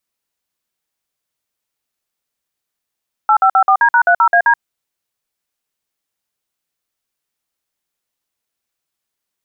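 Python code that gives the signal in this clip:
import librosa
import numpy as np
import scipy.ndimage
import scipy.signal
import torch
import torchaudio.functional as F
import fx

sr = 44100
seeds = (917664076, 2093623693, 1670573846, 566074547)

y = fx.dtmf(sr, digits='8554D#30AD', tone_ms=78, gap_ms=52, level_db=-10.0)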